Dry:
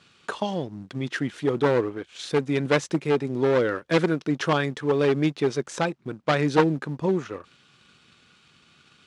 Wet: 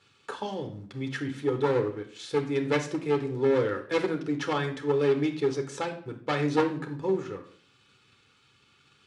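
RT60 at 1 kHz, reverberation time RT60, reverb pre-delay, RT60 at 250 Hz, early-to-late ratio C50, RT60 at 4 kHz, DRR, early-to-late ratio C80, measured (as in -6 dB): 0.50 s, 0.50 s, 9 ms, 0.65 s, 11.0 dB, 0.45 s, 4.5 dB, 14.5 dB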